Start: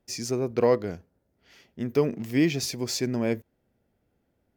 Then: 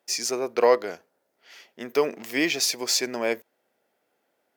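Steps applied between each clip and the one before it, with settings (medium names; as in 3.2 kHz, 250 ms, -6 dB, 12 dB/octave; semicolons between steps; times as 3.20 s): high-pass 590 Hz 12 dB/octave; trim +7.5 dB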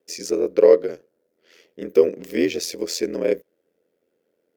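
ring modulator 42 Hz; resonant low shelf 610 Hz +8 dB, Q 3; trim -2.5 dB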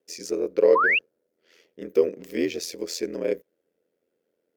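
painted sound rise, 0.75–0.99 s, 940–2900 Hz -15 dBFS; trim -5 dB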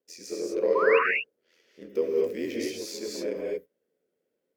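gated-style reverb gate 260 ms rising, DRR -3 dB; trim -8 dB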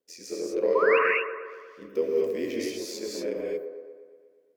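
feedback echo behind a band-pass 119 ms, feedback 62%, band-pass 700 Hz, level -7 dB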